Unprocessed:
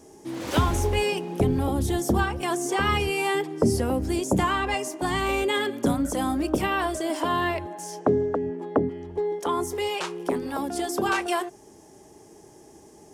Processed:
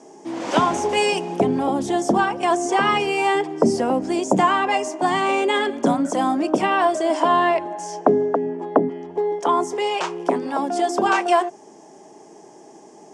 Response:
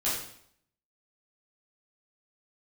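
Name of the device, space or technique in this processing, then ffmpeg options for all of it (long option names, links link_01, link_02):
television speaker: -filter_complex "[0:a]asettb=1/sr,asplit=3[link_01][link_02][link_03];[link_01]atrim=end=0.894[link_04];[link_02]atrim=start=0.89:end=1.36,asetpts=PTS-STARTPTS,afade=type=in:duration=0.004:curve=qsin,afade=type=out:start_time=0.466:duration=0.004:curve=qsin,highshelf=frequency=4500:gain=10[link_05];[link_03]atrim=start=1.356[link_06];[link_04][link_05]acrossfade=duration=0.004:curve1=hsin:curve2=qsin[link_07];[link_07][link_06]acrossfade=duration=0.004:curve1=qsin:curve2=hsin,highpass=frequency=170:width=0.5412,highpass=frequency=170:width=1.3066,equalizer=frequency=690:width_type=q:width=4:gain=7,equalizer=frequency=970:width_type=q:width=4:gain=5,equalizer=frequency=4000:width_type=q:width=4:gain=-5,lowpass=frequency=7800:width=0.5412,lowpass=frequency=7800:width=1.3066,volume=4dB"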